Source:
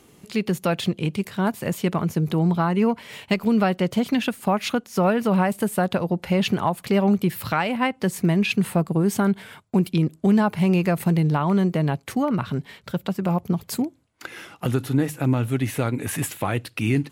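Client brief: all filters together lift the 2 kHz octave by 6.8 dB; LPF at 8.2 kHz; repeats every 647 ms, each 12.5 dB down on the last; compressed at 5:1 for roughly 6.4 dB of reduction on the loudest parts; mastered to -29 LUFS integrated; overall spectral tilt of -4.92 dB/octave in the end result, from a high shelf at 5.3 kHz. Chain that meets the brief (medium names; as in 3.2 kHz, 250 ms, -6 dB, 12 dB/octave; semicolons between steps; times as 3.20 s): low-pass 8.2 kHz; peaking EQ 2 kHz +8 dB; treble shelf 5.3 kHz +6 dB; compression 5:1, threshold -21 dBFS; feedback delay 647 ms, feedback 24%, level -12.5 dB; trim -3 dB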